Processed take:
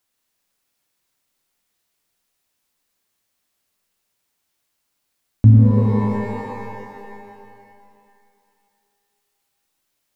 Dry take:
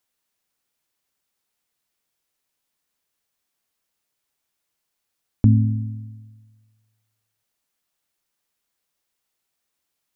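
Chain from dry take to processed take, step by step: dynamic EQ 130 Hz, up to +5 dB, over -28 dBFS, Q 1.5; in parallel at -5.5 dB: soft clip -33.5 dBFS, distortion 0 dB; on the sum: shimmer reverb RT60 2.4 s, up +12 st, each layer -2 dB, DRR 2.5 dB; gain -1 dB

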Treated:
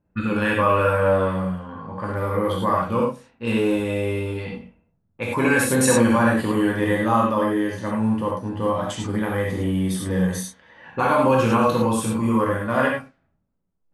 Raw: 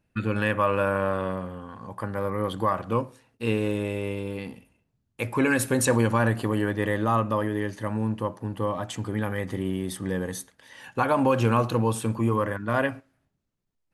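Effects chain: non-linear reverb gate 0.13 s flat, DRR -3.5 dB; low-pass opened by the level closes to 1100 Hz, open at -21.5 dBFS

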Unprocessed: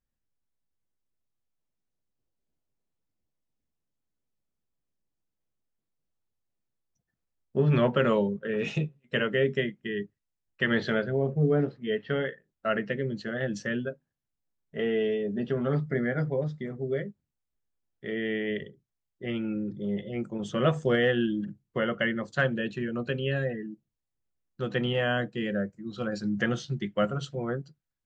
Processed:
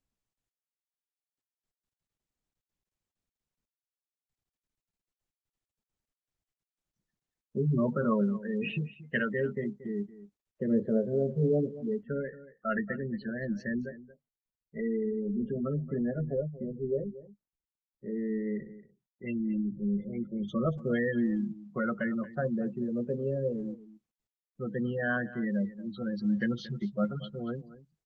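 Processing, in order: spectral gate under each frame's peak -15 dB strong; small resonant body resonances 210/1100/2700 Hz, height 9 dB, ringing for 40 ms; LFO low-pass sine 0.16 Hz 520–4400 Hz; on a send: echo 0.23 s -16.5 dB; on the sum: gain -7 dB; Opus 20 kbps 48000 Hz

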